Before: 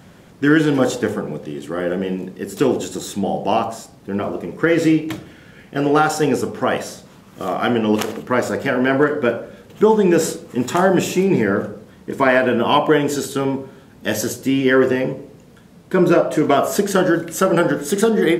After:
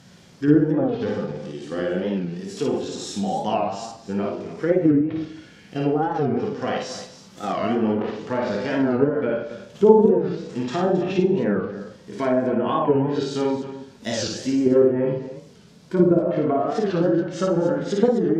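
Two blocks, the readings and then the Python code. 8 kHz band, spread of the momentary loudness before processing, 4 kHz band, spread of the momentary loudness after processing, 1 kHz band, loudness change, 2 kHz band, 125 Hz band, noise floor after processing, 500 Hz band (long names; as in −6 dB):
−10.5 dB, 13 LU, −7.0 dB, 13 LU, −6.0 dB, −4.0 dB, −12.5 dB, −2.5 dB, −48 dBFS, −3.0 dB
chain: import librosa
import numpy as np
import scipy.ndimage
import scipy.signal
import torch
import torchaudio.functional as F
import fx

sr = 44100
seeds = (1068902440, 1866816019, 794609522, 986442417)

p1 = fx.hpss(x, sr, part='percussive', gain_db=-15)
p2 = fx.env_lowpass_down(p1, sr, base_hz=2600.0, full_db=-15.5)
p3 = fx.high_shelf(p2, sr, hz=10000.0, db=-3.5)
p4 = fx.env_lowpass_down(p3, sr, base_hz=670.0, full_db=-12.5)
p5 = fx.peak_eq(p4, sr, hz=5100.0, db=12.0, octaves=1.5)
p6 = fx.level_steps(p5, sr, step_db=14)
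p7 = p5 + (p6 * librosa.db_to_amplitude(3.0))
p8 = fx.vibrato(p7, sr, rate_hz=13.0, depth_cents=6.0)
p9 = p8 + fx.echo_multitap(p8, sr, ms=(55, 269), db=(-3.5, -12.0), dry=0)
p10 = fx.rev_schroeder(p9, sr, rt60_s=0.63, comb_ms=32, drr_db=11.5)
p11 = fx.record_warp(p10, sr, rpm=45.0, depth_cents=160.0)
y = p11 * librosa.db_to_amplitude(-7.5)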